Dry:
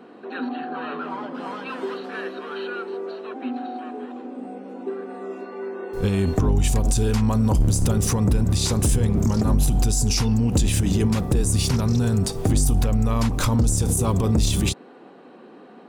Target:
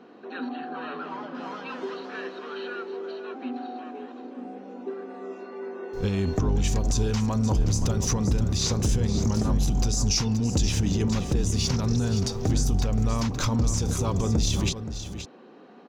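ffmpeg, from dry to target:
-af "highshelf=f=7.5k:t=q:w=3:g=-7,aecho=1:1:524:0.299,volume=-4.5dB"

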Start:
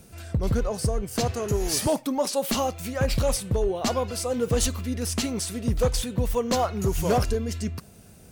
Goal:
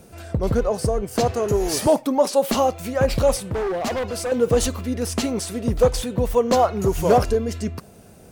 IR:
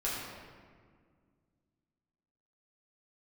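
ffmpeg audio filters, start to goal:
-filter_complex "[0:a]equalizer=f=580:w=0.48:g=8,asettb=1/sr,asplit=3[a][b][c];[a]atrim=end=3.454[d];[b]atrim=start=3.45:end=4.32,asetpts=PTS-STARTPTS,afade=t=in:d=0.004:c=qsin,afade=t=out:st=0.866:d=0.004:c=qsin,asoftclip=type=hard:threshold=-22dB[e];[c]atrim=start=4.316[f];[d][e]acrossfade=d=0.004:c1=hsin:c2=qsin[g];[g][f]acrossfade=d=0.004:c1=qsin:c2=hsin"

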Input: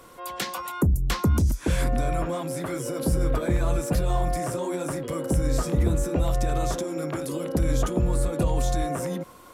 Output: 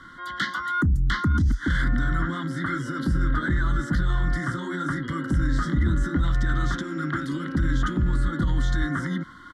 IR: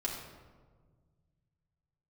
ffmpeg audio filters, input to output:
-filter_complex "[0:a]asuperstop=centerf=2500:order=12:qfactor=2.8,equalizer=f=500:t=o:w=1.8:g=4,asettb=1/sr,asplit=3[a][b][c];[a]atrim=end=6.244[d];[b]atrim=start=6.24:end=8.25,asetpts=PTS-STARTPTS,afade=t=in:d=0.004:c=qsin,afade=t=out:st=2.006:d=0.004:c=qsin,aeval=exprs='sgn(val(0))*max(abs(val(0))-0.0015,0)':c=same[e];[c]atrim=start=8.246[f];[d][e]acrossfade=d=0.004:c1=hsin:c2=qsin[g];[g][f]acrossfade=d=0.004:c1=qsin:c2=hsin,firequalizer=gain_entry='entry(290,0);entry(440,-23);entry(660,-22);entry(1400,9);entry(5600,-9);entry(14000,-30)':delay=0.05:min_phase=1,alimiter=limit=-18.5dB:level=0:latency=1:release=11,volume=3.5dB"

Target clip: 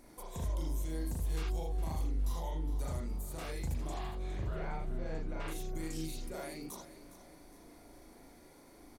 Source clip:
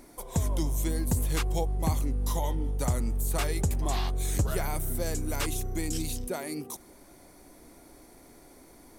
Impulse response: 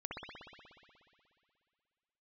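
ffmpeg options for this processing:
-filter_complex "[0:a]asettb=1/sr,asplit=3[a][b][c];[a]atrim=end=3.944[d];[b]atrim=start=3.94:end=5.48,asetpts=PTS-STARTPTS,afade=t=in:d=0.004:c=qsin,afade=t=out:st=1.536:d=0.004:c=qsin,lowpass=2.6k[e];[c]atrim=start=5.476[f];[d][e]acrossfade=d=0.004:c1=hsin:c2=qsin[g];[g][f]acrossfade=d=0.004:c1=qsin:c2=hsin,alimiter=level_in=2dB:limit=-24dB:level=0:latency=1:release=184,volume=-2dB,aecho=1:1:411|822|1233|1644:0.188|0.081|0.0348|0.015[h];[1:a]atrim=start_sample=2205,afade=t=out:st=0.21:d=0.01,atrim=end_sample=9702,asetrate=70560,aresample=44100[i];[h][i]afir=irnorm=-1:irlink=0,volume=1.5dB"

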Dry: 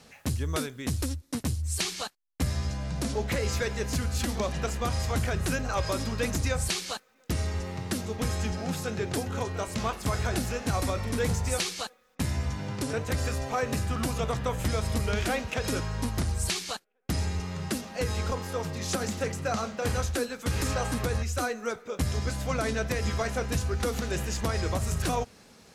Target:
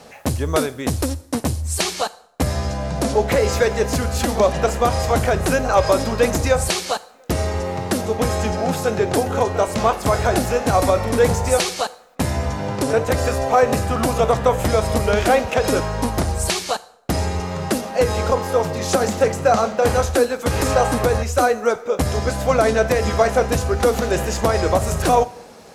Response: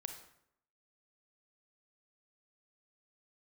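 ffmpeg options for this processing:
-filter_complex "[0:a]equalizer=f=640:t=o:w=1.9:g=11,asplit=2[a][b];[1:a]atrim=start_sample=2205,highshelf=f=5k:g=11[c];[b][c]afir=irnorm=-1:irlink=0,volume=-9dB[d];[a][d]amix=inputs=2:normalize=0,volume=4dB"

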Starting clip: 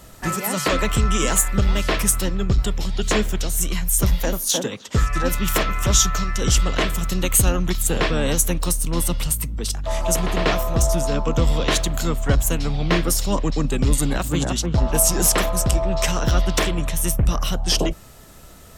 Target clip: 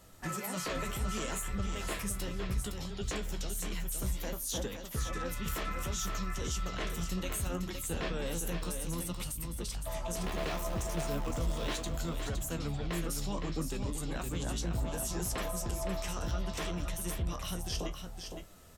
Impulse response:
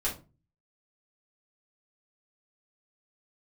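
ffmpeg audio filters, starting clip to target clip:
-filter_complex "[0:a]asettb=1/sr,asplit=3[a][b][c];[a]atrim=end=10.214[d];[b]atrim=start=10.21:end=11.76,asetpts=PTS-STARTPTS,afade=t=in:d=0.004:c=qsin,afade=t=out:st=1.546:d=0.004:c=qsin,aeval=exprs='val(0)+0.5*0.0668*sgn(val(0))':c=same[e];[c]atrim=start=11.756[f];[d][e]acrossfade=d=0.004:c1=hsin:c2=qsin[g];[g][f]acrossfade=d=0.004:c1=qsin:c2=hsin,alimiter=limit=-14.5dB:level=0:latency=1:release=44,flanger=delay=9.2:depth=9.7:regen=43:speed=0.65:shape=triangular,aecho=1:1:513:0.473,volume=-8.5dB"

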